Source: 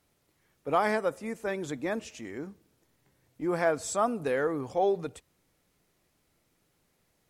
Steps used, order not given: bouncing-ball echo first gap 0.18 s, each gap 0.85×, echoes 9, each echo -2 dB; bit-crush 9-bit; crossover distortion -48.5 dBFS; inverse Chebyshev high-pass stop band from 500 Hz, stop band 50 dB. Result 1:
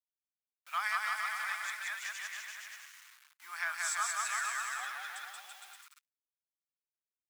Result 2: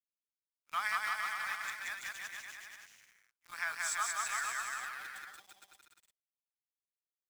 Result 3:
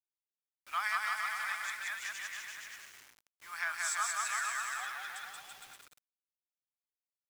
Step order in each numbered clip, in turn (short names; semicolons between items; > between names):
bouncing-ball echo > bit-crush > crossover distortion > inverse Chebyshev high-pass; inverse Chebyshev high-pass > bit-crush > crossover distortion > bouncing-ball echo; bouncing-ball echo > crossover distortion > inverse Chebyshev high-pass > bit-crush